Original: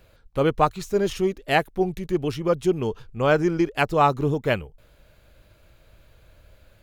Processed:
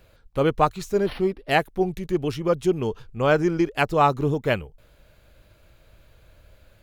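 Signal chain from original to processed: 1.02–1.51 s: decimation joined by straight lines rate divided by 6×

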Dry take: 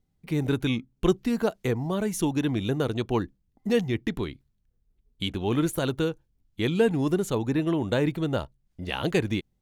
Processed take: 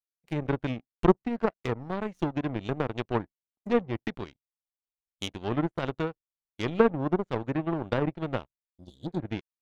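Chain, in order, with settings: low-pass that closes with the level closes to 1.2 kHz, closed at -20 dBFS; spectral replace 8.81–9.19 s, 370–3300 Hz both; power-law waveshaper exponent 2; trim +6 dB

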